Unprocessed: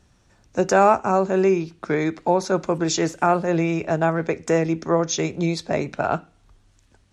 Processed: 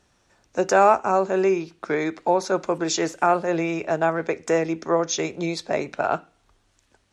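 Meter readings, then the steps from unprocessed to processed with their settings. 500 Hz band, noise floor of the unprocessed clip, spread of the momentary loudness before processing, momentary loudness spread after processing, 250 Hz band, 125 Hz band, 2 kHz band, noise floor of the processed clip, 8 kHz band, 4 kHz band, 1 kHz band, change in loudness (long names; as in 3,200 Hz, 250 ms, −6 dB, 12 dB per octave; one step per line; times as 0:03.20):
−1.0 dB, −59 dBFS, 8 LU, 10 LU, −3.5 dB, −8.0 dB, 0.0 dB, −66 dBFS, −1.0 dB, −0.5 dB, 0.0 dB, −1.5 dB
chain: bass and treble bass −10 dB, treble −1 dB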